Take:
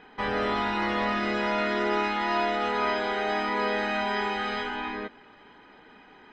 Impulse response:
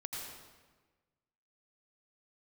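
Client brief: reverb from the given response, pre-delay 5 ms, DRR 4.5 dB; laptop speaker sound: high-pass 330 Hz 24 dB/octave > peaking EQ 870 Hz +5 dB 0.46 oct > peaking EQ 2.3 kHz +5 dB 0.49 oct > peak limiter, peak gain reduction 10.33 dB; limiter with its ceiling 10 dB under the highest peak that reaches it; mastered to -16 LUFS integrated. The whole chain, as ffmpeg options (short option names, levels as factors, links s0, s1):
-filter_complex "[0:a]alimiter=limit=0.0631:level=0:latency=1,asplit=2[s0][s1];[1:a]atrim=start_sample=2205,adelay=5[s2];[s1][s2]afir=irnorm=-1:irlink=0,volume=0.596[s3];[s0][s3]amix=inputs=2:normalize=0,highpass=f=330:w=0.5412,highpass=f=330:w=1.3066,equalizer=f=870:t=o:w=0.46:g=5,equalizer=f=2300:t=o:w=0.49:g=5,volume=9.44,alimiter=limit=0.398:level=0:latency=1"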